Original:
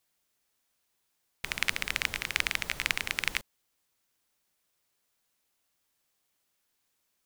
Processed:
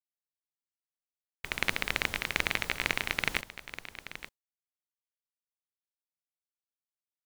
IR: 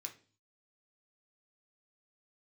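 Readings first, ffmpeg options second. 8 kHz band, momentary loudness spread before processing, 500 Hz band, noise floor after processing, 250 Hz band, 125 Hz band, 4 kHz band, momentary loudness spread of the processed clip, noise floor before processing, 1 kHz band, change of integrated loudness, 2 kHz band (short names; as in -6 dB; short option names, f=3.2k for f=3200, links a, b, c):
-4.0 dB, 7 LU, +6.5 dB, under -85 dBFS, +6.0 dB, +4.0 dB, -1.5 dB, 15 LU, -78 dBFS, +3.0 dB, -0.5 dB, 0.0 dB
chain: -af "agate=range=-33dB:threshold=-36dB:ratio=3:detection=peak,aeval=exprs='(tanh(4.47*val(0)+0.5)-tanh(0.5))/4.47':c=same,aecho=1:1:878:0.224,volume=3.5dB"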